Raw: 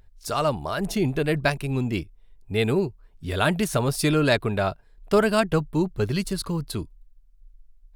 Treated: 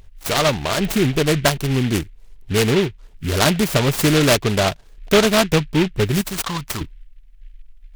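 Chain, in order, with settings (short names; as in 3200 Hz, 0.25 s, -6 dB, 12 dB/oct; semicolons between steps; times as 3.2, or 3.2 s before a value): 6.21–6.81 resonant low shelf 800 Hz -9 dB, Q 3; in parallel at 0 dB: compressor, threshold -30 dBFS, peak gain reduction 15 dB; on the sum: noise-modulated delay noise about 2300 Hz, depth 0.13 ms; gain +3.5 dB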